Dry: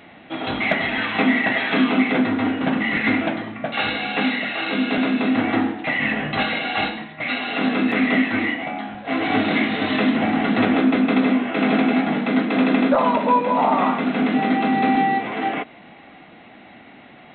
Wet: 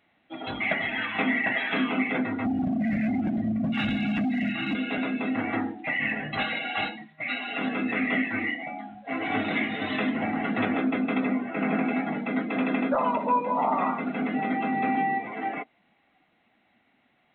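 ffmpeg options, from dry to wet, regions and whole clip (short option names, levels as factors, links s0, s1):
-filter_complex "[0:a]asettb=1/sr,asplit=3[s0][s1][s2];[s0]atrim=end=2.454[s3];[s1]atrim=start=2.45:end=4.75,asetpts=PTS-STARTPTS,afade=t=in:d=0.004:c=qsin,afade=t=out:st=2.296:d=0.004:c=qsin,lowshelf=f=320:t=q:w=3:g=12,acompressor=threshold=0.282:ratio=8:attack=3.2:release=140:knee=1:detection=peak,asoftclip=type=hard:threshold=0.188[s4];[s2]atrim=start=4.746[s5];[s3][s4]acrossfade=d=0.004:c1=hsin:c2=qsin[s6];[s6][s5]acrossfade=d=0.004:c1=qsin:c2=hsin,asettb=1/sr,asplit=3[s7][s8][s9];[s7]atrim=end=11.274[s10];[s8]atrim=start=11.27:end=11.85,asetpts=PTS-STARTPTS,afade=t=in:d=0.004:c=qsin,afade=t=out:st=0.576:d=0.004:c=qsin,acrossover=split=3100[s11][s12];[s12]acompressor=threshold=0.00501:ratio=4:attack=1:release=60[s13];[s11][s13]amix=inputs=2:normalize=0,equalizer=f=180:t=o:w=0.31:g=5.5[s14];[s9]atrim=start=11.846[s15];[s10][s14]acrossfade=d=0.004:c1=hsin:c2=qsin[s16];[s16][s15]acrossfade=d=0.004:c1=qsin:c2=hsin,afftdn=nr=16:nf=-27,equalizer=f=300:t=o:w=3:g=-5,volume=0.631"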